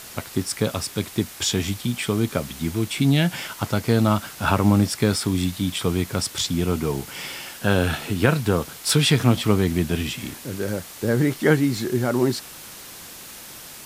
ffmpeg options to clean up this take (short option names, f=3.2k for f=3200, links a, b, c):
-af "adeclick=t=4,afwtdn=0.011"